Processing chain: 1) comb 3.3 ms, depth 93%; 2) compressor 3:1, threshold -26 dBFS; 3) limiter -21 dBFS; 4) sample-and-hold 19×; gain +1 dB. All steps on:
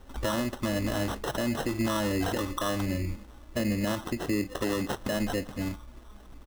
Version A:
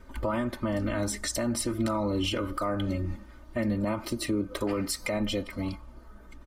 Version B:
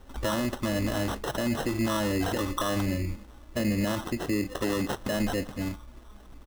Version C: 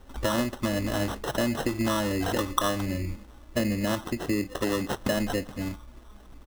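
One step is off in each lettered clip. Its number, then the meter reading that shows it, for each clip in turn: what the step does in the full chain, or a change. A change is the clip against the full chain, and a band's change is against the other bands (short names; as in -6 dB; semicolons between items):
4, distortion -2 dB; 2, loudness change +1.0 LU; 3, crest factor change +7.0 dB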